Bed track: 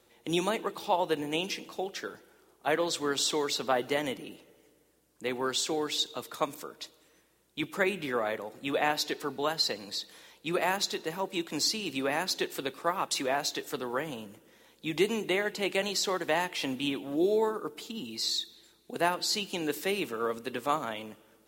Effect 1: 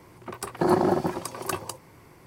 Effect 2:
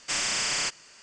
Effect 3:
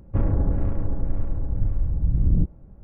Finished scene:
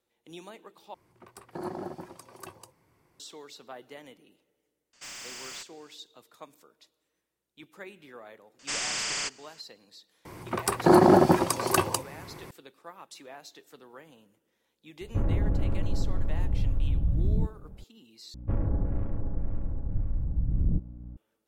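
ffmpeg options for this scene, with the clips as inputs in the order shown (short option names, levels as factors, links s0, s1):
-filter_complex "[1:a]asplit=2[s0][s1];[2:a]asplit=2[s2][s3];[3:a]asplit=2[s4][s5];[0:a]volume=0.15[s6];[s2]asoftclip=type=tanh:threshold=0.0335[s7];[s1]alimiter=level_in=4.73:limit=0.891:release=50:level=0:latency=1[s8];[s4]alimiter=level_in=6.68:limit=0.891:release=50:level=0:latency=1[s9];[s5]aeval=exprs='val(0)+0.0178*(sin(2*PI*60*n/s)+sin(2*PI*2*60*n/s)/2+sin(2*PI*3*60*n/s)/3+sin(2*PI*4*60*n/s)/4+sin(2*PI*5*60*n/s)/5)':c=same[s10];[s6]asplit=3[s11][s12][s13];[s11]atrim=end=0.944[s14];[s0]atrim=end=2.26,asetpts=PTS-STARTPTS,volume=0.178[s15];[s12]atrim=start=3.196:end=18.344[s16];[s10]atrim=end=2.83,asetpts=PTS-STARTPTS,volume=0.473[s17];[s13]atrim=start=21.166[s18];[s7]atrim=end=1.02,asetpts=PTS-STARTPTS,volume=0.316,afade=t=in:d=0.004:c=hsin,afade=t=out:st=1.016:d=0.004:c=hsin,adelay=217413S[s19];[s3]atrim=end=1.02,asetpts=PTS-STARTPTS,volume=0.668,afade=t=in:d=0.004:c=hsin,afade=t=out:st=1.016:d=0.004:c=hsin,adelay=8590[s20];[s8]atrim=end=2.26,asetpts=PTS-STARTPTS,volume=0.473,afade=t=in:d=0.004:c=hsin,afade=t=out:st=2.256:d=0.004:c=hsin,adelay=10250[s21];[s9]atrim=end=2.83,asetpts=PTS-STARTPTS,volume=0.141,afade=t=in:d=0.004:c=hsin,afade=t=out:st=2.826:d=0.004:c=hsin,adelay=15010[s22];[s14][s15]acrossfade=d=0.004:c1=hsin:c2=hsin[s23];[s23][s16]acrossfade=d=0.004:c1=hsin:c2=hsin[s24];[s24][s17]acrossfade=d=0.004:c1=hsin:c2=hsin[s25];[s25][s18]acrossfade=d=0.004:c1=hsin:c2=hsin[s26];[s26][s19][s20][s21][s22]amix=inputs=5:normalize=0"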